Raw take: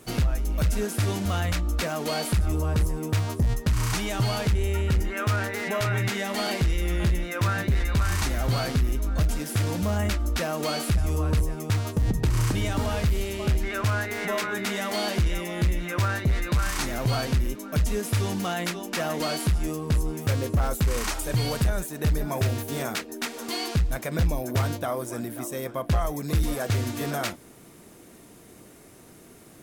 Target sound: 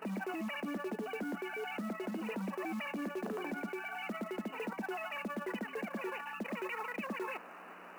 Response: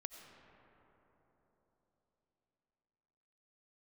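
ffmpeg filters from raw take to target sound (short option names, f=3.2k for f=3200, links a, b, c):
-af "areverse,acompressor=threshold=-35dB:ratio=20,areverse,equalizer=f=2.1k:w=1.1:g=-3.5,asetrate=163611,aresample=44100,aeval=exprs='val(0)+0.002*(sin(2*PI*60*n/s)+sin(2*PI*2*60*n/s)/2+sin(2*PI*3*60*n/s)/3+sin(2*PI*4*60*n/s)/4+sin(2*PI*5*60*n/s)/5)':c=same,afftfilt=real='re*between(b*sr/4096,180,3000)':imag='im*between(b*sr/4096,180,3000)':win_size=4096:overlap=0.75,acrusher=bits=5:mode=log:mix=0:aa=0.000001"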